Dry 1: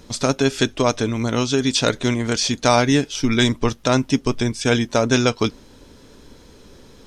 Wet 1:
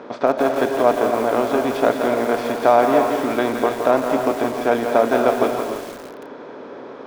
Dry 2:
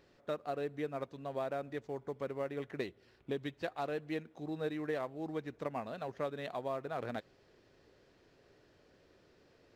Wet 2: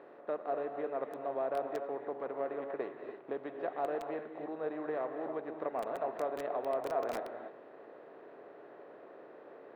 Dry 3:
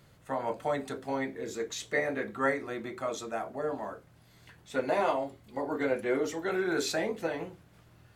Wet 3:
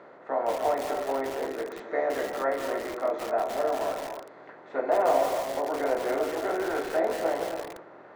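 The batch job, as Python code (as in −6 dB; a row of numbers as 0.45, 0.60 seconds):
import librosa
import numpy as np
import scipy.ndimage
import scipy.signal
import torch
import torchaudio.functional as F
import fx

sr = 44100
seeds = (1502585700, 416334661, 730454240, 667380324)

y = fx.bin_compress(x, sr, power=0.6)
y = scipy.signal.sosfilt(scipy.signal.butter(2, 1300.0, 'lowpass', fs=sr, output='sos'), y)
y = fx.rev_gated(y, sr, seeds[0], gate_ms=320, shape='rising', drr_db=5.5)
y = fx.dynamic_eq(y, sr, hz=680.0, q=4.4, threshold_db=-39.0, ratio=4.0, max_db=8)
y = scipy.signal.sosfilt(scipy.signal.butter(2, 360.0, 'highpass', fs=sr, output='sos'), y)
y = fx.echo_crushed(y, sr, ms=168, feedback_pct=55, bits=5, wet_db=-7.0)
y = y * librosa.db_to_amplitude(-1.0)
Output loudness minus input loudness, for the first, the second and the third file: +0.5, +2.0, +4.0 LU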